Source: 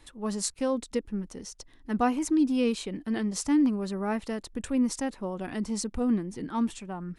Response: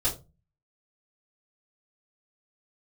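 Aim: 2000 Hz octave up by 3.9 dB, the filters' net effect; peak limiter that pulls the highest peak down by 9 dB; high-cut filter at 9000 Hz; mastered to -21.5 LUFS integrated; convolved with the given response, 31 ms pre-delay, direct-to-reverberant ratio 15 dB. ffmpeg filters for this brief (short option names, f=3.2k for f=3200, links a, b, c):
-filter_complex "[0:a]lowpass=9k,equalizer=f=2k:t=o:g=5,alimiter=limit=-23dB:level=0:latency=1,asplit=2[a][b];[1:a]atrim=start_sample=2205,adelay=31[c];[b][c]afir=irnorm=-1:irlink=0,volume=-23dB[d];[a][d]amix=inputs=2:normalize=0,volume=11dB"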